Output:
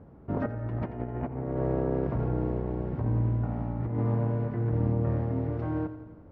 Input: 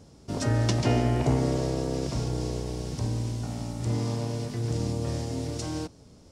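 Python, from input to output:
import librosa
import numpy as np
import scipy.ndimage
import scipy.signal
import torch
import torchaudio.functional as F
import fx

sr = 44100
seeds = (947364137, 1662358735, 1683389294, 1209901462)

p1 = scipy.signal.sosfilt(scipy.signal.butter(4, 1700.0, 'lowpass', fs=sr, output='sos'), x)
p2 = fx.over_compress(p1, sr, threshold_db=-28.0, ratio=-0.5)
y = p2 + fx.echo_feedback(p2, sr, ms=87, feedback_pct=60, wet_db=-13.0, dry=0)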